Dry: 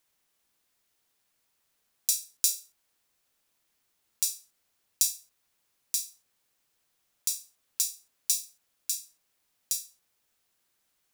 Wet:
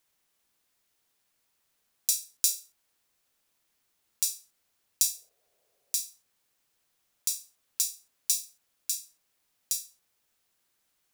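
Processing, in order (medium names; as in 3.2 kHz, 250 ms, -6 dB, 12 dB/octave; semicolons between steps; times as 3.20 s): 5.09–6.06 s: high-order bell 530 Hz +14.5 dB 1.1 oct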